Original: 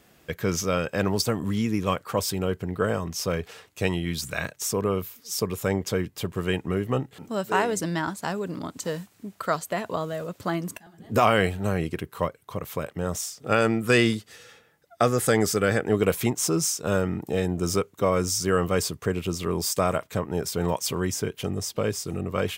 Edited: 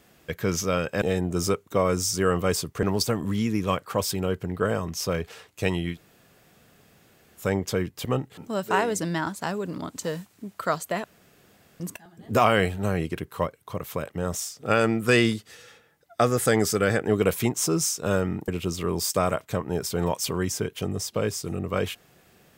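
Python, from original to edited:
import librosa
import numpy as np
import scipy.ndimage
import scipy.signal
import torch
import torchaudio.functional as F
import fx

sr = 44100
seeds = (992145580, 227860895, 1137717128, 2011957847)

y = fx.edit(x, sr, fx.room_tone_fill(start_s=4.12, length_s=1.48, crossfade_s=0.1),
    fx.cut(start_s=6.24, length_s=0.62),
    fx.room_tone_fill(start_s=9.85, length_s=0.76),
    fx.move(start_s=17.29, length_s=1.81, to_s=1.02), tone=tone)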